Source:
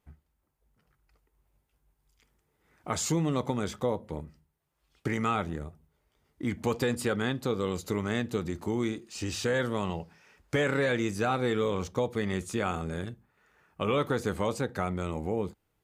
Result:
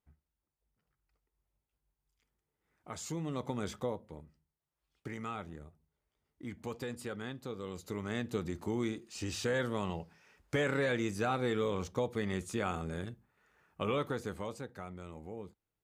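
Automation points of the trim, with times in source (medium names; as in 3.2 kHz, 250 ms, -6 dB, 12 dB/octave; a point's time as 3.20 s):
3.00 s -12.5 dB
3.73 s -4.5 dB
4.16 s -12 dB
7.62 s -12 dB
8.35 s -4.5 dB
13.82 s -4.5 dB
14.77 s -14 dB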